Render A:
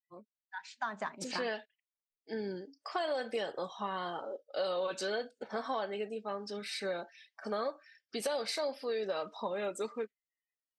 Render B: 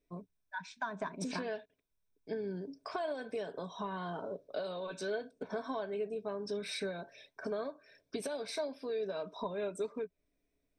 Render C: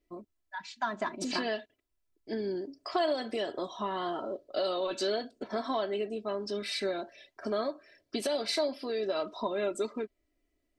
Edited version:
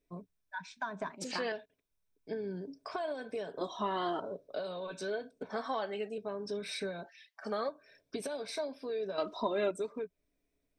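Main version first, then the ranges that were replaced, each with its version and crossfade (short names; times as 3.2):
B
1.1–1.52 from A
3.61–4.2 from C
5.51–6.18 from A
7.06–7.69 from A
9.18–9.71 from C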